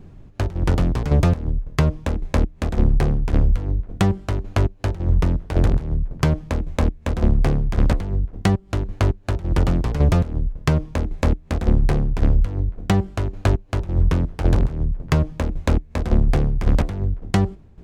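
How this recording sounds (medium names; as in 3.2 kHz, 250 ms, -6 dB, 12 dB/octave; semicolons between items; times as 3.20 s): tremolo saw down 1.8 Hz, depth 70%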